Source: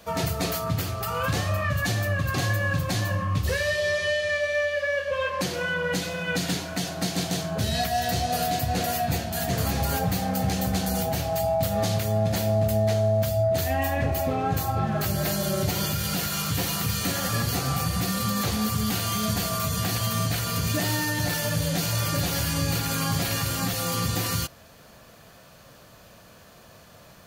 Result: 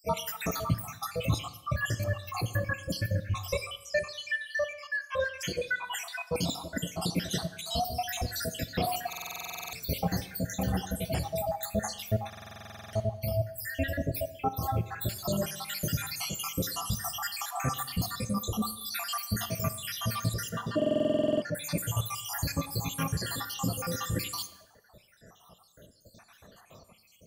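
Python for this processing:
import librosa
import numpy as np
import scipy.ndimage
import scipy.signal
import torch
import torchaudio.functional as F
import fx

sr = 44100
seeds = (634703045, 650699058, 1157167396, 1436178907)

y = fx.spec_dropout(x, sr, seeds[0], share_pct=74)
y = fx.dereverb_blind(y, sr, rt60_s=1.4)
y = fx.bandpass_edges(y, sr, low_hz=190.0, high_hz=2200.0, at=(20.49, 21.55))
y = fx.rev_plate(y, sr, seeds[1], rt60_s=0.93, hf_ratio=0.85, predelay_ms=0, drr_db=11.0)
y = fx.rider(y, sr, range_db=3, speed_s=0.5)
y = fx.buffer_glitch(y, sr, at_s=(9.08, 12.28, 20.77), block=2048, repeats=13)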